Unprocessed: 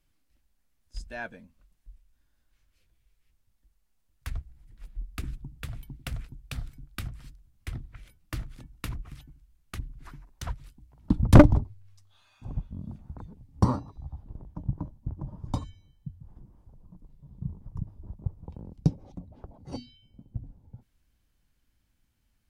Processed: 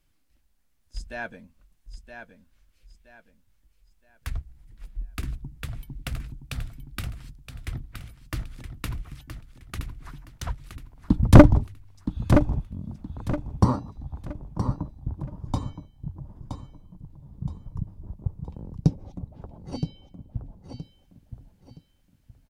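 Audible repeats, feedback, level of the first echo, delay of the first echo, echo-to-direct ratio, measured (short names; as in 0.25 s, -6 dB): 3, 31%, -8.5 dB, 0.97 s, -8.0 dB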